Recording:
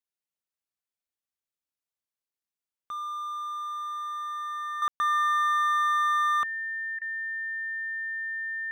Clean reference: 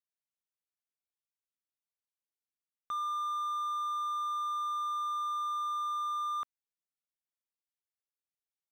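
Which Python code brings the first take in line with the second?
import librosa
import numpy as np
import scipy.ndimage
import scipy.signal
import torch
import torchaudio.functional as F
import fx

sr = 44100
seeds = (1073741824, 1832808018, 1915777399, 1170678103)

y = fx.notch(x, sr, hz=1800.0, q=30.0)
y = fx.fix_ambience(y, sr, seeds[0], print_start_s=6.93, print_end_s=7.43, start_s=4.88, end_s=5.0)
y = fx.fix_interpolate(y, sr, at_s=(4.89, 6.99), length_ms=24.0)
y = fx.gain(y, sr, db=fx.steps((0.0, 0.0), (4.82, -9.0)))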